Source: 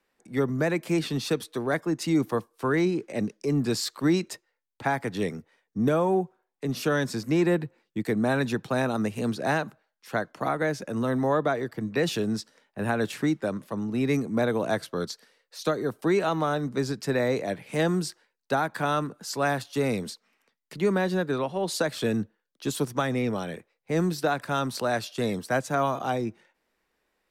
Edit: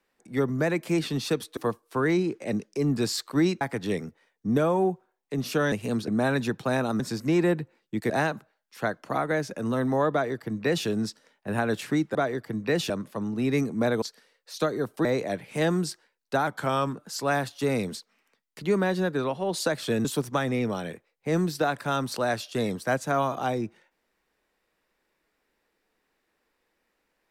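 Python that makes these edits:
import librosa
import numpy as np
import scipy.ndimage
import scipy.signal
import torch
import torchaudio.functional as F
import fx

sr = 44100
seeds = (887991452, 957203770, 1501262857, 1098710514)

y = fx.edit(x, sr, fx.cut(start_s=1.57, length_s=0.68),
    fx.cut(start_s=4.29, length_s=0.63),
    fx.swap(start_s=7.03, length_s=1.1, other_s=9.05, other_length_s=0.36),
    fx.duplicate(start_s=11.43, length_s=0.75, to_s=13.46),
    fx.cut(start_s=14.58, length_s=0.49),
    fx.cut(start_s=16.1, length_s=1.13),
    fx.speed_span(start_s=18.65, length_s=0.43, speed=0.92),
    fx.cut(start_s=22.19, length_s=0.49), tone=tone)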